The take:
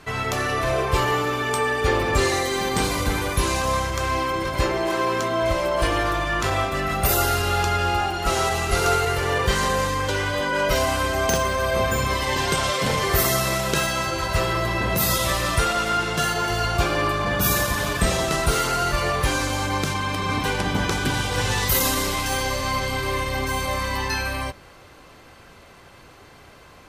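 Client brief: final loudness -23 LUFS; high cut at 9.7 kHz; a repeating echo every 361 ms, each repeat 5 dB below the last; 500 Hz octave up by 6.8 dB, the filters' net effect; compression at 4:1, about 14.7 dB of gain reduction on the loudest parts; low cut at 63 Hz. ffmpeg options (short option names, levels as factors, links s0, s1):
-af "highpass=63,lowpass=9700,equalizer=f=500:t=o:g=8.5,acompressor=threshold=0.0282:ratio=4,aecho=1:1:361|722|1083|1444|1805|2166|2527:0.562|0.315|0.176|0.0988|0.0553|0.031|0.0173,volume=2.24"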